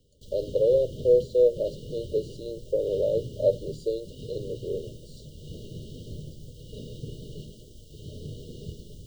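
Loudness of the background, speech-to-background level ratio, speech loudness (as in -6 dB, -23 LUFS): -42.0 LUFS, 15.5 dB, -26.5 LUFS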